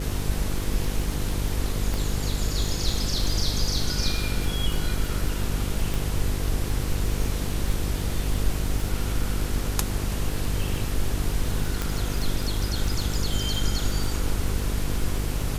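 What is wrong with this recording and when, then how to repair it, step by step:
buzz 50 Hz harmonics 10 -29 dBFS
crackle 27 per s -28 dBFS
1.94 s: pop
5.94 s: pop
11.82 s: pop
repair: de-click; de-hum 50 Hz, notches 10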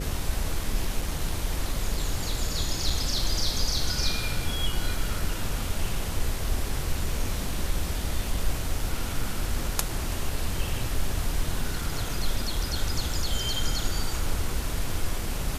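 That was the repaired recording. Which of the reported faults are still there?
nothing left

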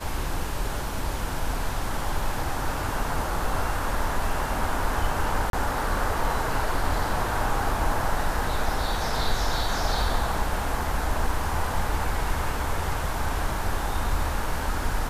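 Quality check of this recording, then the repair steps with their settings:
5.50–5.53 s: dropout 32 ms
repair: interpolate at 5.50 s, 32 ms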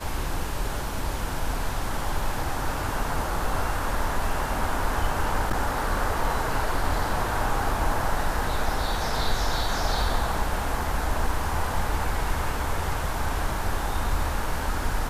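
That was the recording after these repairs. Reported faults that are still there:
nothing left

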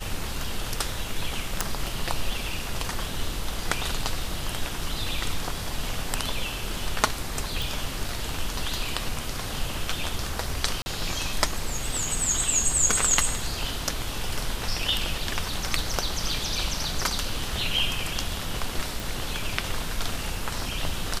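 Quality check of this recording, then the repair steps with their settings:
1.61 s: pop
7.62 s: pop
10.82–10.86 s: dropout 40 ms
19.00 s: pop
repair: de-click; interpolate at 10.82 s, 40 ms

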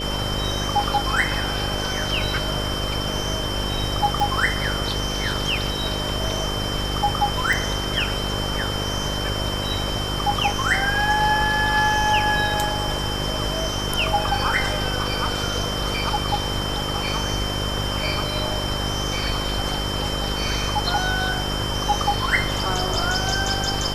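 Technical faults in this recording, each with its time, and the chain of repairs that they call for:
buzz 50 Hz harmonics 12 -28 dBFS
whine 3.1 kHz -29 dBFS
4.20 s: pop
7.53 s: pop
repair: de-click; band-stop 3.1 kHz, Q 30; de-hum 50 Hz, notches 12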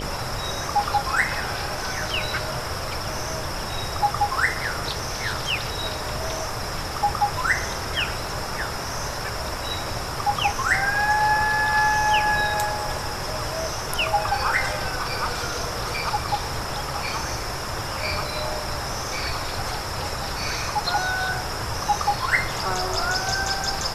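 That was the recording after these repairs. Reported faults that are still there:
4.20 s: pop

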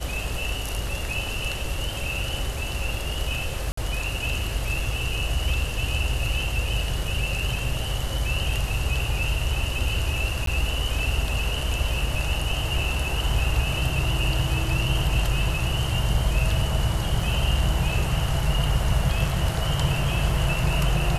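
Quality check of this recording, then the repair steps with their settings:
3.72–3.77 s: dropout 54 ms
10.46–10.47 s: dropout 13 ms
17.21 s: dropout 2.9 ms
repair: interpolate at 3.72 s, 54 ms; interpolate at 10.46 s, 13 ms; interpolate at 17.21 s, 2.9 ms

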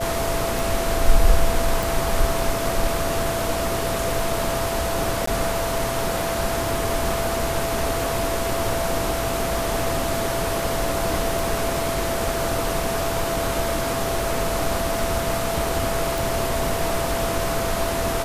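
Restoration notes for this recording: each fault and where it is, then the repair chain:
tick 33 1/3 rpm
whine 670 Hz -26 dBFS
1.83 s: pop
5.26–5.27 s: dropout 14 ms
16.18 s: pop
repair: de-click; band-stop 670 Hz, Q 30; interpolate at 5.26 s, 14 ms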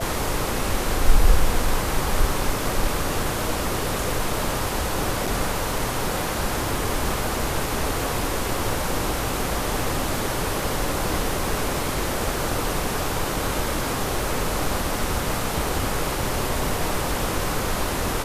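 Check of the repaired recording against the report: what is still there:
nothing left

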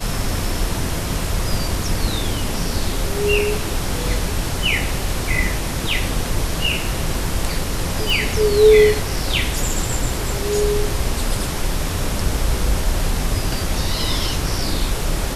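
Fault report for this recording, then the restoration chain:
8.10 s: pop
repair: de-click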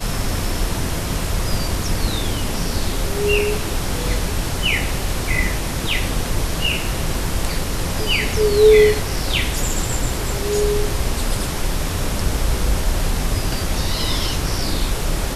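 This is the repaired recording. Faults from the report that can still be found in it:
nothing left

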